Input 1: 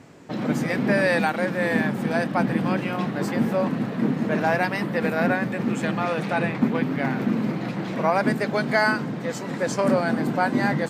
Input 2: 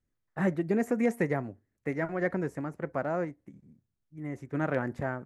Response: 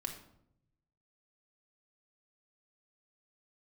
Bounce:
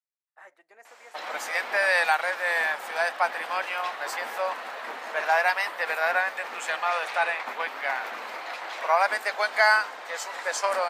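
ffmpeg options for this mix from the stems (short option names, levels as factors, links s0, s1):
-filter_complex "[0:a]adelay=850,volume=1.33[s0];[1:a]acontrast=71,volume=0.106[s1];[s0][s1]amix=inputs=2:normalize=0,highpass=f=710:w=0.5412,highpass=f=710:w=1.3066"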